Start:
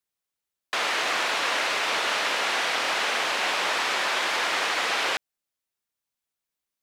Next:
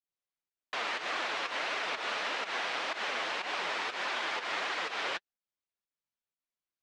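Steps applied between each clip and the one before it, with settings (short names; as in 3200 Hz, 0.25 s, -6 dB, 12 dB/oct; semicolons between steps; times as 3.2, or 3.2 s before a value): pump 123 bpm, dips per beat 1, -13 dB, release 0.135 s; flange 1.7 Hz, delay 2.4 ms, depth 8 ms, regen +38%; air absorption 93 m; gain -3.5 dB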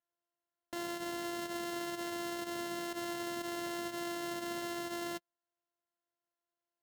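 sample sorter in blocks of 128 samples; limiter -30.5 dBFS, peak gain reduction 8.5 dB; notch comb 1200 Hz; gain +1 dB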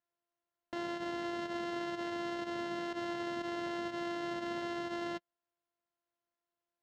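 air absorption 160 m; gain +2 dB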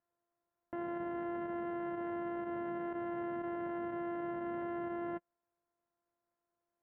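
Bessel low-pass 1300 Hz, order 6; limiter -39 dBFS, peak gain reduction 8 dB; gain +6 dB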